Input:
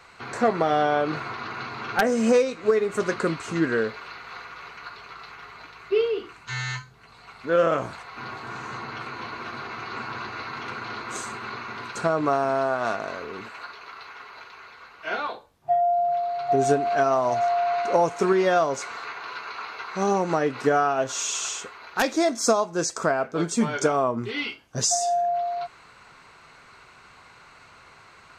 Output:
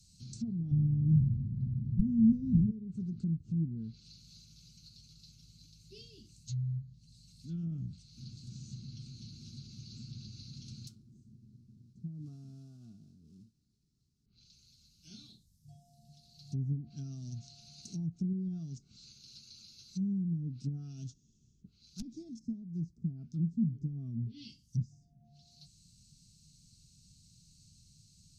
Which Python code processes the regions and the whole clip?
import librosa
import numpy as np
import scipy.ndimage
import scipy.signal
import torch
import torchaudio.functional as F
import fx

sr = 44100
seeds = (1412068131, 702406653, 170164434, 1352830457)

y = fx.chain(x, sr, fx.bass_treble(bass_db=13, treble_db=2),
    fx.sustainer(db_per_s=27.0), at=(0.71, 2.71))
y = fx.chain(y, sr, fx.crossing_spikes(level_db=-24.5),
    fx.low_shelf(hz=340.0, db=-10.0), at=(10.87, 14.26))
y = scipy.signal.sosfilt(scipy.signal.ellip(3, 1.0, 50, [180.0, 5200.0], 'bandstop', fs=sr, output='sos'), y)
y = fx.env_lowpass_down(y, sr, base_hz=410.0, full_db=-32.0)
y = y * librosa.db_to_amplitude(1.0)